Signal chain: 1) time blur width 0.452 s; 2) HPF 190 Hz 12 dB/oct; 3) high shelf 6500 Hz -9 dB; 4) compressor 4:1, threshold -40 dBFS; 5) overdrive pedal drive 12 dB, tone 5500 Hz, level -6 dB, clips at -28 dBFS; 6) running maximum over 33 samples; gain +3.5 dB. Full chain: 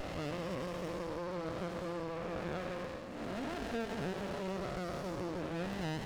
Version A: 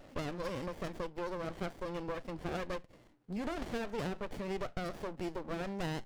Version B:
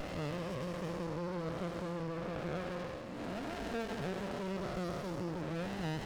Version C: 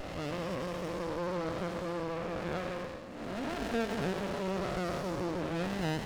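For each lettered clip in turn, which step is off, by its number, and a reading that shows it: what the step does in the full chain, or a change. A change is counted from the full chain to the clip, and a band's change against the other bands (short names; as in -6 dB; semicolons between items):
1, crest factor change +2.5 dB; 2, 125 Hz band +3.0 dB; 4, mean gain reduction 5.5 dB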